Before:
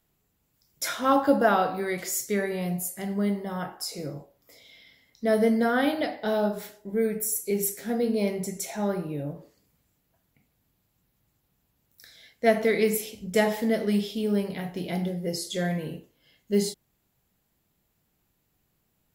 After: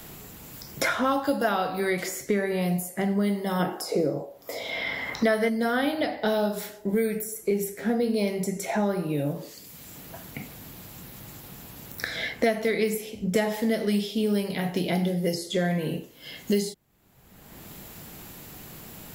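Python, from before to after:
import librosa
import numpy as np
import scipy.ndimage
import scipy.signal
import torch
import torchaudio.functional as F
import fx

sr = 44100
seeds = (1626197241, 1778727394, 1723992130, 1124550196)

y = fx.peak_eq(x, sr, hz=fx.line((3.59, 290.0), (5.48, 1600.0)), db=13.0, octaves=2.1, at=(3.59, 5.48), fade=0.02)
y = fx.band_squash(y, sr, depth_pct=100)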